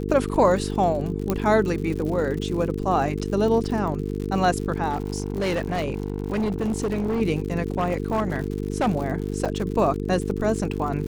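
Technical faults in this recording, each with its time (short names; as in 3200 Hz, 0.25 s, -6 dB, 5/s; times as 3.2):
buzz 50 Hz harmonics 9 -28 dBFS
crackle 93/s -31 dBFS
1.3 pop -10 dBFS
4.89–7.22 clipped -20.5 dBFS
7.78–8.88 clipped -18 dBFS
9.45–9.46 gap 5.8 ms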